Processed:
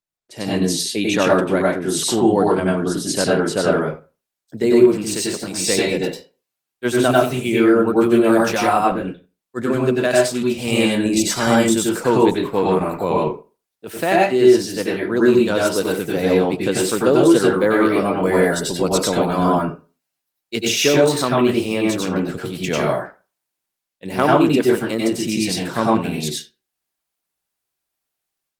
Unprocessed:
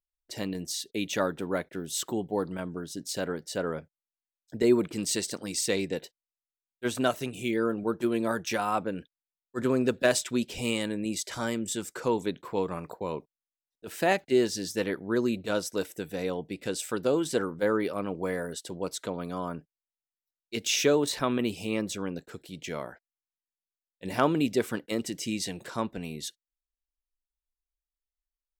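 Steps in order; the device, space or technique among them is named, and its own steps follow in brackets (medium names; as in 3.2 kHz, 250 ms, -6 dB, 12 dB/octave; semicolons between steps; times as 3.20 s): far-field microphone of a smart speaker (reverberation RT60 0.30 s, pre-delay 89 ms, DRR -3.5 dB; high-pass 90 Hz 24 dB/octave; level rider gain up to 14.5 dB; trim -1 dB; Opus 24 kbps 48 kHz)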